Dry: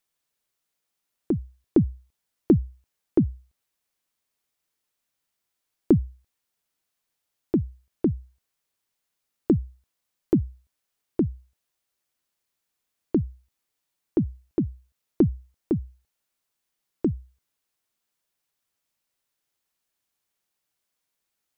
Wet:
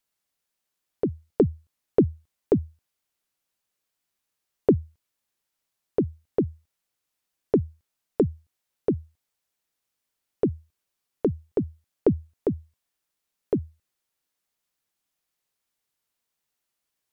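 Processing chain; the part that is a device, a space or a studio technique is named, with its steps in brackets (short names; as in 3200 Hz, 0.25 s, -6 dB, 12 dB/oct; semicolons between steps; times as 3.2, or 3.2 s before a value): nightcore (varispeed +26%)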